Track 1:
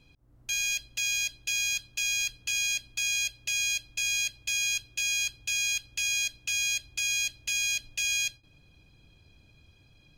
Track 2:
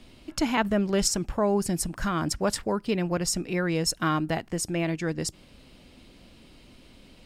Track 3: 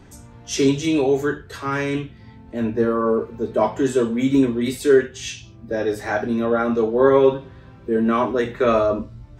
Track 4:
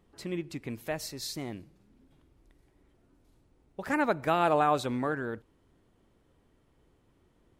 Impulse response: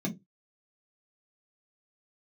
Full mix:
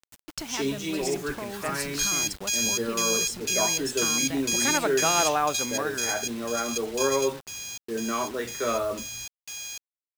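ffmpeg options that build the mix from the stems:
-filter_complex "[0:a]equalizer=f=2600:t=o:w=0.91:g=-8,acontrast=28,adelay=1500,volume=0.75[s0];[1:a]acompressor=threshold=0.0316:ratio=6,agate=range=0.0224:threshold=0.00355:ratio=3:detection=peak,volume=0.668,asplit=2[s1][s2];[2:a]volume=0.335[s3];[3:a]highpass=130,adelay=750,volume=1[s4];[s2]apad=whole_len=515086[s5];[s0][s5]sidechaingate=range=0.251:threshold=0.00178:ratio=16:detection=peak[s6];[s6][s1][s3][s4]amix=inputs=4:normalize=0,tiltshelf=f=680:g=-3.5,acrusher=bits=6:mix=0:aa=0.000001"

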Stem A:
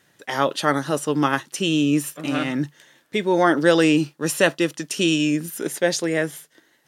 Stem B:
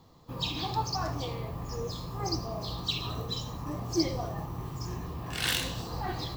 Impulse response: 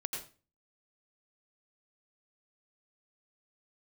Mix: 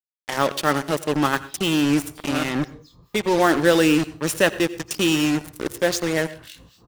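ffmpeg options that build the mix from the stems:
-filter_complex "[0:a]acrusher=bits=3:mix=0:aa=0.5,volume=0.794,asplit=2[s0][s1];[s1]volume=0.224[s2];[1:a]equalizer=f=730:t=o:w=1:g=-6.5,acrossover=split=1500[s3][s4];[s3]aeval=exprs='val(0)*(1-1/2+1/2*cos(2*PI*4.4*n/s))':c=same[s5];[s4]aeval=exprs='val(0)*(1-1/2-1/2*cos(2*PI*4.4*n/s))':c=same[s6];[s5][s6]amix=inputs=2:normalize=0,adelay=950,volume=0.282,asplit=2[s7][s8];[s8]volume=0.133[s9];[2:a]atrim=start_sample=2205[s10];[s2][s9]amix=inputs=2:normalize=0[s11];[s11][s10]afir=irnorm=-1:irlink=0[s12];[s0][s7][s12]amix=inputs=3:normalize=0"

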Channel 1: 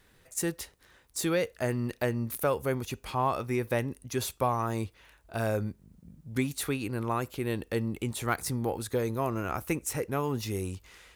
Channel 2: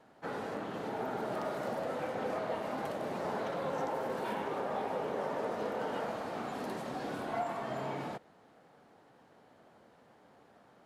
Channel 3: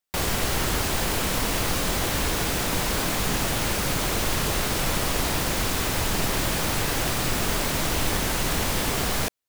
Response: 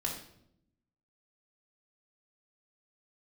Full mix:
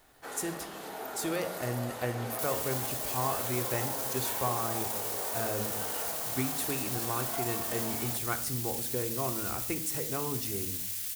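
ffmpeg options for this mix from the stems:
-filter_complex "[0:a]volume=0.355,asplit=2[s0][s1];[s1]volume=0.531[s2];[1:a]aemphasis=mode=production:type=riaa,volume=0.531,asplit=2[s3][s4];[s4]volume=0.447[s5];[2:a]alimiter=limit=0.075:level=0:latency=1,highpass=f=1500:w=0.5412,highpass=f=1500:w=1.3066,aderivative,adelay=2250,volume=0.562[s6];[3:a]atrim=start_sample=2205[s7];[s2][s5]amix=inputs=2:normalize=0[s8];[s8][s7]afir=irnorm=-1:irlink=0[s9];[s0][s3][s6][s9]amix=inputs=4:normalize=0,highshelf=f=5800:g=4.5"

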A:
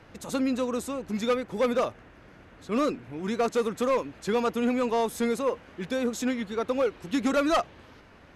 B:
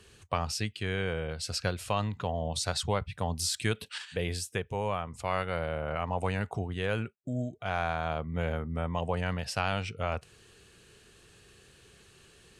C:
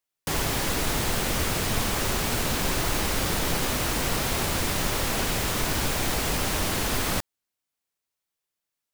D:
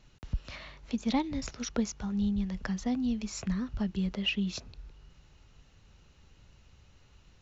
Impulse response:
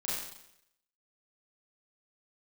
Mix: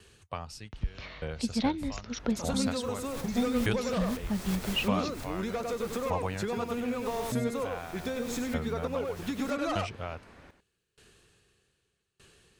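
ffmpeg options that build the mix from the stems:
-filter_complex "[0:a]adelay=2150,volume=0.944,asplit=2[s0][s1];[s1]volume=0.282[s2];[1:a]aeval=exprs='val(0)*pow(10,-28*if(lt(mod(0.82*n/s,1),2*abs(0.82)/1000),1-mod(0.82*n/s,1)/(2*abs(0.82)/1000),(mod(0.82*n/s,1)-2*abs(0.82)/1000)/(1-2*abs(0.82)/1000))/20)':c=same,volume=1.12,asplit=2[s3][s4];[2:a]adelay=2300,volume=0.355[s5];[3:a]lowpass=5400,acontrast=48,adelay=500,volume=0.531,asplit=3[s6][s7][s8];[s6]atrim=end=2.67,asetpts=PTS-STARTPTS,afade=t=out:st=2.666:d=0.004:c=hsin[s9];[s7]atrim=start=2.67:end=3.24,asetpts=PTS-STARTPTS,volume=0[s10];[s8]atrim=start=3.24,asetpts=PTS-STARTPTS,afade=t=in:d=0.004:c=hsin[s11];[s9][s10][s11]concat=n=3:v=0:a=1[s12];[s4]apad=whole_len=495419[s13];[s5][s13]sidechaincompress=threshold=0.00126:ratio=4:attack=34:release=146[s14];[s0][s14]amix=inputs=2:normalize=0,bandreject=f=2900:w=19,acompressor=threshold=0.0282:ratio=6,volume=1[s15];[s2]aecho=0:1:98:1[s16];[s3][s12][s15][s16]amix=inputs=4:normalize=0"

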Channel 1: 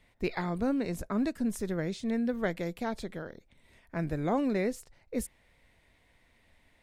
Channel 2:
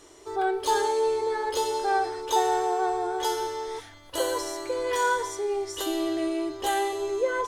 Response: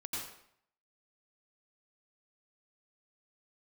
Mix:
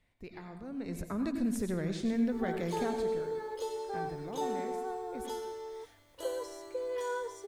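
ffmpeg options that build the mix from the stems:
-filter_complex "[0:a]alimiter=level_in=1.41:limit=0.0631:level=0:latency=1:release=320,volume=0.708,equalizer=f=77:w=0.51:g=3.5,volume=0.891,afade=t=in:st=0.65:d=0.69:silence=0.266073,afade=t=out:st=2.85:d=0.35:silence=0.316228,asplit=2[s0][s1];[s1]volume=0.631[s2];[1:a]equalizer=f=490:t=o:w=0.63:g=9,acrusher=bits=8:mix=0:aa=0.000001,adelay=2050,volume=0.168[s3];[2:a]atrim=start_sample=2205[s4];[s2][s4]afir=irnorm=-1:irlink=0[s5];[s0][s3][s5]amix=inputs=3:normalize=0"

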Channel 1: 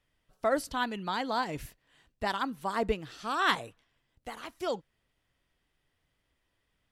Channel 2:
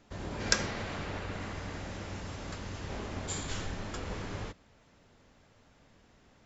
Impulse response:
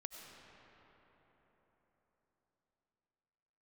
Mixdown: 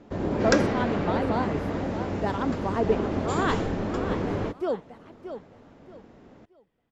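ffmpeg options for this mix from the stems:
-filter_complex "[0:a]volume=0.531,asplit=2[s0][s1];[s1]volume=0.316[s2];[1:a]volume=1.33[s3];[s2]aecho=0:1:627|1254|1881|2508:1|0.28|0.0784|0.022[s4];[s0][s3][s4]amix=inputs=3:normalize=0,lowpass=f=3200:p=1,equalizer=f=330:t=o:w=3:g=13"

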